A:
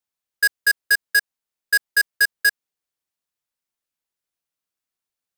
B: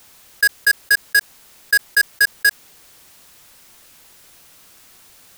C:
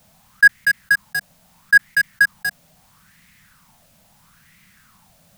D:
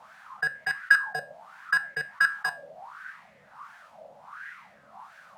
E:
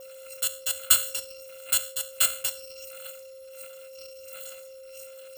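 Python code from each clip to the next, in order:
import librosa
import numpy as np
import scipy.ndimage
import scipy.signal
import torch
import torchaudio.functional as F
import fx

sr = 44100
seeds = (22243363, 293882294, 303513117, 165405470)

y1 = fx.low_shelf(x, sr, hz=150.0, db=3.0)
y1 = fx.env_flatten(y1, sr, amount_pct=50)
y1 = F.gain(torch.from_numpy(y1), 2.0).numpy()
y2 = fx.low_shelf_res(y1, sr, hz=260.0, db=11.5, q=3.0)
y2 = fx.bell_lfo(y2, sr, hz=0.76, low_hz=600.0, high_hz=2100.0, db=17)
y2 = F.gain(torch.from_numpy(y2), -9.5).numpy()
y3 = fx.wah_lfo(y2, sr, hz=1.4, low_hz=530.0, high_hz=1600.0, q=7.5)
y3 = fx.comb_fb(y3, sr, f0_hz=71.0, decay_s=0.28, harmonics='all', damping=0.0, mix_pct=60)
y3 = fx.spectral_comp(y3, sr, ratio=2.0)
y3 = F.gain(torch.from_numpy(y3), 7.5).numpy()
y4 = fx.bit_reversed(y3, sr, seeds[0], block=256)
y4 = y4 + 10.0 ** (-43.0 / 20.0) * np.sin(2.0 * np.pi * 530.0 * np.arange(len(y4)) / sr)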